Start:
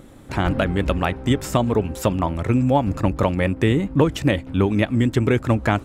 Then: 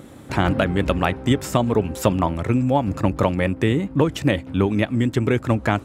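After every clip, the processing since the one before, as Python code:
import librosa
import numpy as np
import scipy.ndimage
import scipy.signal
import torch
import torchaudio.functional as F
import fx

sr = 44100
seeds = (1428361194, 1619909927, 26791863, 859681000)

y = scipy.signal.sosfilt(scipy.signal.butter(2, 75.0, 'highpass', fs=sr, output='sos'), x)
y = fx.rider(y, sr, range_db=4, speed_s=0.5)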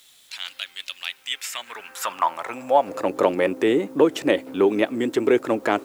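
y = fx.transient(x, sr, attack_db=-4, sustain_db=0)
y = fx.filter_sweep_highpass(y, sr, from_hz=3600.0, to_hz=380.0, start_s=1.03, end_s=3.23, q=2.1)
y = fx.quant_dither(y, sr, seeds[0], bits=10, dither='triangular')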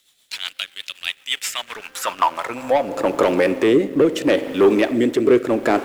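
y = fx.rev_spring(x, sr, rt60_s=1.9, pass_ms=(41,), chirp_ms=30, drr_db=15.0)
y = fx.leveller(y, sr, passes=2)
y = fx.rotary_switch(y, sr, hz=8.0, then_hz=0.75, switch_at_s=2.02)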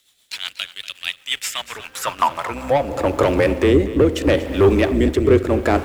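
y = fx.octave_divider(x, sr, octaves=2, level_db=-2.0)
y = y + 10.0 ** (-15.0 / 20.0) * np.pad(y, (int(239 * sr / 1000.0), 0))[:len(y)]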